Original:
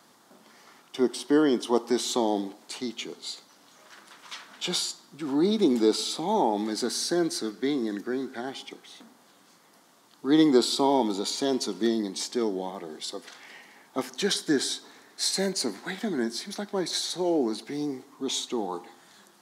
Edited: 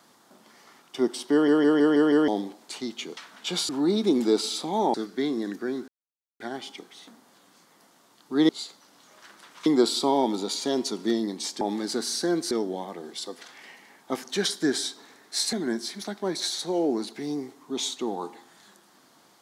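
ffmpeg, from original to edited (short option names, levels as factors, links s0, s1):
-filter_complex "[0:a]asplit=16[s0][s1][s2][s3][s4][s5][s6][s7][s8][s9][s10][s11][s12][s13][s14][s15];[s0]atrim=end=1.482[s16];[s1]atrim=start=1.318:end=1.482[s17];[s2]atrim=start=1.318:end=1.482[s18];[s3]atrim=start=1.318:end=1.482[s19];[s4]atrim=start=1.318:end=1.482[s20];[s5]atrim=start=1.318:end=1.482[s21];[s6]atrim=start=2.278:end=3.172[s22];[s7]atrim=start=4.338:end=4.862[s23];[s8]atrim=start=5.238:end=6.492[s24];[s9]atrim=start=7.388:end=8.33,asetpts=PTS-STARTPTS,afade=t=out:st=0.938:d=0.004:c=hsin,apad=pad_dur=0.52[s25];[s10]atrim=start=8.33:end=10.422,asetpts=PTS-STARTPTS,afade=t=in:d=0.004:c=hsin[s26];[s11]atrim=start=3.168:end=4.342[s27];[s12]atrim=start=10.418:end=12.372[s28];[s13]atrim=start=6.488:end=7.392[s29];[s14]atrim=start=12.368:end=15.392[s30];[s15]atrim=start=16.038[s31];[s16][s17]acrossfade=d=0.004:c1=hsin:c2=hsin[s32];[s32][s18]acrossfade=d=0.004:c1=hsin:c2=hsin[s33];[s33][s19]acrossfade=d=0.004:c1=hsin:c2=hsin[s34];[s34][s20]acrossfade=d=0.004:c1=hsin:c2=hsin[s35];[s35][s21]acrossfade=d=0.004:c1=hsin:c2=hsin[s36];[s36][s22]acrossfade=d=0.004:c1=hsin:c2=hsin[s37];[s37][s23]acrossfade=d=0.004:c1=hsin:c2=hsin[s38];[s38][s24]acrossfade=d=0.004:c1=hsin:c2=hsin[s39];[s25][s26]concat=n=2:v=0:a=1[s40];[s39][s40]acrossfade=d=0.004:c1=hsin:c2=hsin[s41];[s41][s27]acrossfade=d=0.004:c1=hsin:c2=hsin[s42];[s42][s28]acrossfade=d=0.004:c1=hsin:c2=hsin[s43];[s43][s29]acrossfade=d=0.004:c1=hsin:c2=hsin[s44];[s44][s30]acrossfade=d=0.004:c1=hsin:c2=hsin[s45];[s45][s31]acrossfade=d=0.004:c1=hsin:c2=hsin"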